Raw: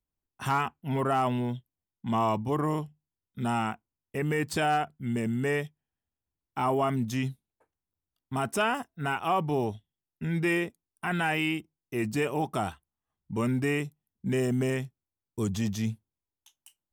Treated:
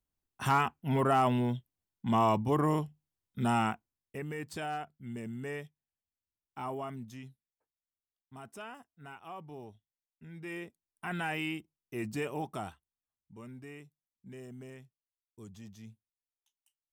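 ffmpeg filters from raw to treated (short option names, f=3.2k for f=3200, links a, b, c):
-af "volume=11.5dB,afade=t=out:st=3.67:d=0.59:silence=0.281838,afade=t=out:st=6.67:d=0.61:silence=0.421697,afade=t=in:st=10.37:d=0.72:silence=0.266073,afade=t=out:st=12.33:d=1.04:silence=0.223872"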